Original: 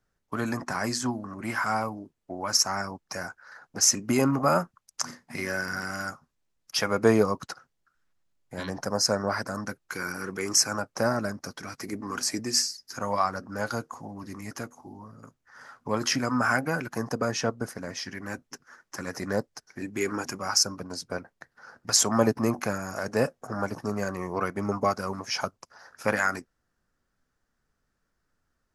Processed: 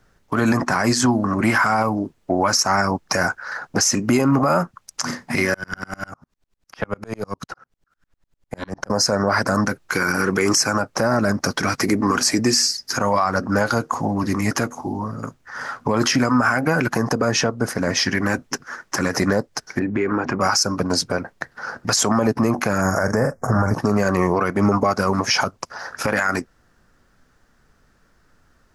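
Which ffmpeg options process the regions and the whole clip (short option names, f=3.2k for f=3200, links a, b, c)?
-filter_complex "[0:a]asettb=1/sr,asplit=3[a][b][c];[a]atrim=end=5.544[d];[b]atrim=start=5.54:end=8.9,asetpts=PTS-STARTPTS,afade=t=in:d=0.004:c=qsin,afade=t=out:st=3.356:d=0.004:c=qsin,acrossover=split=100|2100[e][f][g];[e]acompressor=threshold=-48dB:ratio=4[h];[f]acompressor=threshold=-36dB:ratio=4[i];[g]acompressor=threshold=-50dB:ratio=4[j];[h][i][j]amix=inputs=3:normalize=0,aeval=exprs='(tanh(17.8*val(0)+0.4)-tanh(0.4))/17.8':c=same,aeval=exprs='val(0)*pow(10,-36*if(lt(mod(-10*n/s,1),2*abs(-10)/1000),1-mod(-10*n/s,1)/(2*abs(-10)/1000),(mod(-10*n/s,1)-2*abs(-10)/1000)/(1-2*abs(-10)/1000))/20)':c=same[k];[c]atrim=start=8.896[l];[d][k]acrossfade=d=0.004:c1=hsin:c2=qsin[m];[m][l]acrossfade=d=0.004:c1=qsin:c2=hsin,asettb=1/sr,asplit=3[n][o][p];[n]atrim=end=19.794[q];[o]atrim=start=19.79:end=20.41,asetpts=PTS-STARTPTS,afade=t=in:d=0.004:c=qsin,afade=t=out:st=0.616:d=0.004:c=qsin,lowpass=1.9k,acompressor=threshold=-36dB:ratio=5:attack=3.2:release=140:knee=1:detection=peak[r];[p]atrim=start=20.406[s];[q][r]acrossfade=d=0.004:c1=hsin:c2=qsin[t];[t][s]acrossfade=d=0.004:c1=qsin:c2=hsin,asettb=1/sr,asplit=3[u][v][w];[u]atrim=end=22.814[x];[v]atrim=start=22.81:end=23.74,asetpts=PTS-STARTPTS,afade=t=in:d=0.004:c=qsin,afade=t=out:st=0.926:d=0.004:c=qsin,asubboost=boost=11:cutoff=160,asuperstop=centerf=3300:order=8:qfactor=1.1,asplit=2[y][z];[z]adelay=42,volume=-10dB[aa];[y][aa]amix=inputs=2:normalize=0,atrim=end_sample=41013[ab];[w]atrim=start=23.736[ac];[x][ab]acrossfade=d=0.004:c1=hsin:c2=qsin[ad];[ad][ac]acrossfade=d=0.004:c1=qsin:c2=hsin,highshelf=f=7.1k:g=-6.5,acompressor=threshold=-33dB:ratio=2,alimiter=level_in=25.5dB:limit=-1dB:release=50:level=0:latency=1,volume=-7dB"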